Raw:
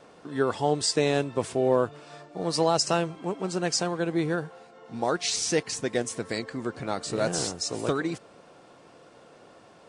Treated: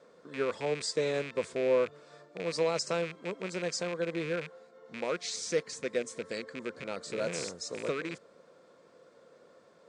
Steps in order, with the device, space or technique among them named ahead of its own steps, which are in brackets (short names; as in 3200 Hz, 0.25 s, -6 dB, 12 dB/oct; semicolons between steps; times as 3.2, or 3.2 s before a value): car door speaker with a rattle (rattling part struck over -37 dBFS, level -19 dBFS; speaker cabinet 110–8200 Hz, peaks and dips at 120 Hz -9 dB, 300 Hz -5 dB, 510 Hz +7 dB, 780 Hz -10 dB, 2800 Hz -9 dB, 5600 Hz -3 dB); gain -7 dB